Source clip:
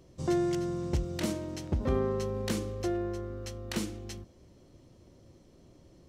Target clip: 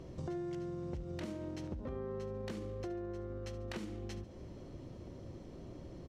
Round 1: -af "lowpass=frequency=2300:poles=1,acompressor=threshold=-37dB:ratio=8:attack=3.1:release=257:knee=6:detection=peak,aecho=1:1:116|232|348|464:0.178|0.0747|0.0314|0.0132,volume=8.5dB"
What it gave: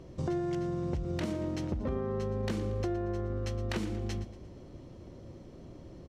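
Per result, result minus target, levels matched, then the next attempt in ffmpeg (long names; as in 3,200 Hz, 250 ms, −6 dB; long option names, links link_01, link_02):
echo 45 ms late; downward compressor: peak gain reduction −8.5 dB
-af "lowpass=frequency=2300:poles=1,acompressor=threshold=-37dB:ratio=8:attack=3.1:release=257:knee=6:detection=peak,aecho=1:1:71|142|213|284:0.178|0.0747|0.0314|0.0132,volume=8.5dB"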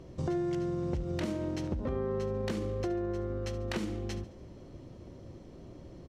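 downward compressor: peak gain reduction −8.5 dB
-af "lowpass=frequency=2300:poles=1,acompressor=threshold=-46.5dB:ratio=8:attack=3.1:release=257:knee=6:detection=peak,aecho=1:1:71|142|213|284:0.178|0.0747|0.0314|0.0132,volume=8.5dB"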